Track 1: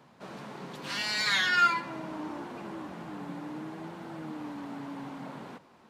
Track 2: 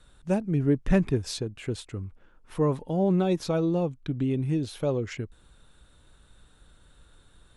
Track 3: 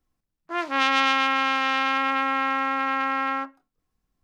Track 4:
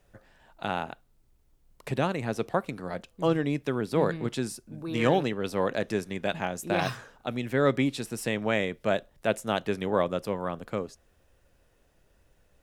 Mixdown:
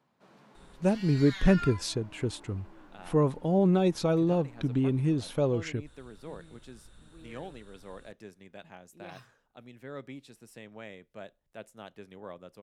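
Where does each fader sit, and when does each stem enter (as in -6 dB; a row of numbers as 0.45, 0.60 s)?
-15.0 dB, 0.0 dB, off, -18.5 dB; 0.00 s, 0.55 s, off, 2.30 s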